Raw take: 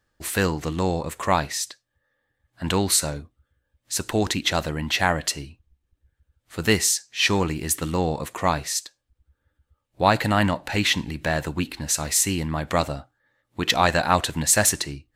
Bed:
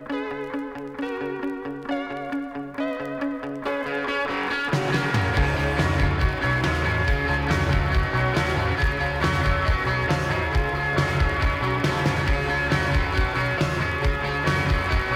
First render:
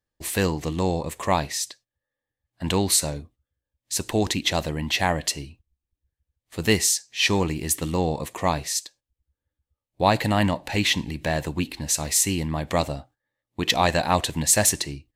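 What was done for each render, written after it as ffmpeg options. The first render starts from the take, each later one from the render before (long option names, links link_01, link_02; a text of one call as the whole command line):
ffmpeg -i in.wav -af "agate=range=-12dB:threshold=-50dB:ratio=16:detection=peak,equalizer=frequency=1400:width=3.1:gain=-9" out.wav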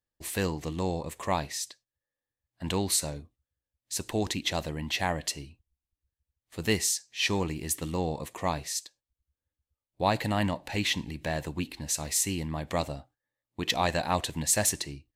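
ffmpeg -i in.wav -af "volume=-6.5dB" out.wav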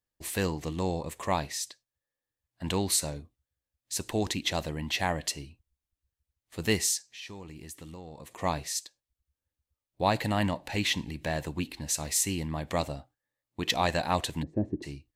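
ffmpeg -i in.wav -filter_complex "[0:a]asplit=3[link_01][link_02][link_03];[link_01]afade=type=out:start_time=7.02:duration=0.02[link_04];[link_02]acompressor=threshold=-43dB:ratio=4:attack=3.2:release=140:knee=1:detection=peak,afade=type=in:start_time=7.02:duration=0.02,afade=type=out:start_time=8.38:duration=0.02[link_05];[link_03]afade=type=in:start_time=8.38:duration=0.02[link_06];[link_04][link_05][link_06]amix=inputs=3:normalize=0,asplit=3[link_07][link_08][link_09];[link_07]afade=type=out:start_time=14.42:duration=0.02[link_10];[link_08]lowpass=frequency=320:width_type=q:width=3.4,afade=type=in:start_time=14.42:duration=0.02,afade=type=out:start_time=14.82:duration=0.02[link_11];[link_09]afade=type=in:start_time=14.82:duration=0.02[link_12];[link_10][link_11][link_12]amix=inputs=3:normalize=0" out.wav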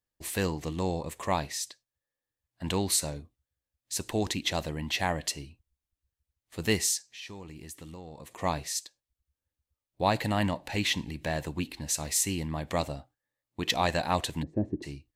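ffmpeg -i in.wav -af anull out.wav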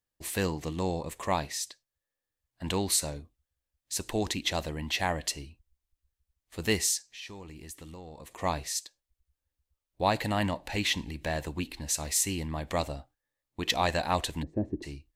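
ffmpeg -i in.wav -af "asubboost=boost=4.5:cutoff=51" out.wav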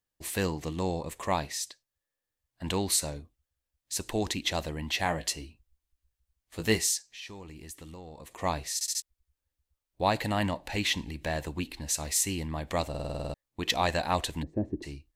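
ffmpeg -i in.wav -filter_complex "[0:a]asettb=1/sr,asplit=3[link_01][link_02][link_03];[link_01]atrim=end=5.044[link_04];[link_02]atrim=start=5.04:end=6.8,asetpts=PTS-STARTPTS,afade=type=in:duration=0.004:curve=qsin,afade=type=out:start_time=1.756:duration=0.004:curve=qsin,asplit=2[link_05][link_06];[link_06]adelay=18,volume=-7.5dB[link_07];[link_05][link_07]amix=inputs=2:normalize=0,atrim=end_sample=77616[link_08];[link_03]atrim=start=6.796[link_09];[link_04][link_08]acrossfade=duration=0.004:curve1=hsin:curve2=qsin[link_10];[link_10][link_09]acrossfade=duration=0.004:curve1=qsin:curve2=hsin,asplit=14[link_11][link_12][link_13][link_14][link_15][link_16][link_17][link_18][link_19][link_20][link_21][link_22][link_23][link_24];[link_11]atrim=end=8.812[link_25];[link_12]atrim=start=8.738:end=8.812[link_26];[link_13]atrim=start=8.738:end=8.812[link_27];[link_14]atrim=start=8.738:end=8.812[link_28];[link_15]atrim=start=9.018:end=12.942[link_29];[link_16]atrim=start=12.888:end=12.942[link_30];[link_17]atrim=start=12.888:end=12.942[link_31];[link_18]atrim=start=12.888:end=12.942[link_32];[link_19]atrim=start=12.888:end=12.942[link_33];[link_20]atrim=start=12.888:end=12.942[link_34];[link_21]atrim=start=12.888:end=12.942[link_35];[link_22]atrim=start=12.888:end=12.942[link_36];[link_23]atrim=start=12.888:end=12.942[link_37];[link_24]atrim=start=13.338[link_38];[link_25][link_26]acrossfade=duration=0.004:curve1=hsin:curve2=hsin[link_39];[link_39][link_27]acrossfade=duration=0.004:curve1=hsin:curve2=hsin[link_40];[link_40][link_28]acrossfade=duration=0.004:curve1=hsin:curve2=hsin[link_41];[link_41][link_29]acrossfade=duration=0.004:curve1=hsin:curve2=hsin[link_42];[link_42][link_30]acrossfade=duration=0.004:curve1=hsin:curve2=hsin[link_43];[link_43][link_31]acrossfade=duration=0.004:curve1=hsin:curve2=hsin[link_44];[link_44][link_32]acrossfade=duration=0.004:curve1=hsin:curve2=hsin[link_45];[link_45][link_33]acrossfade=duration=0.004:curve1=hsin:curve2=hsin[link_46];[link_46][link_34]acrossfade=duration=0.004:curve1=hsin:curve2=hsin[link_47];[link_47][link_35]acrossfade=duration=0.004:curve1=hsin:curve2=hsin[link_48];[link_48][link_36]acrossfade=duration=0.004:curve1=hsin:curve2=hsin[link_49];[link_49][link_37]acrossfade=duration=0.004:curve1=hsin:curve2=hsin[link_50];[link_50][link_38]acrossfade=duration=0.004:curve1=hsin:curve2=hsin" out.wav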